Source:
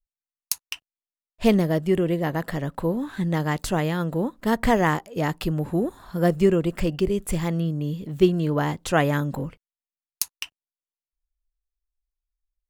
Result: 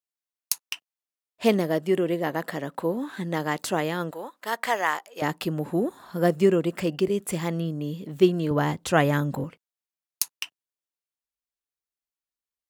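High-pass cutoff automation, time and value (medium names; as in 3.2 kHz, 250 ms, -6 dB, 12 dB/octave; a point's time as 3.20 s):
250 Hz
from 4.11 s 770 Hz
from 5.22 s 190 Hz
from 8.51 s 83 Hz
from 9.44 s 190 Hz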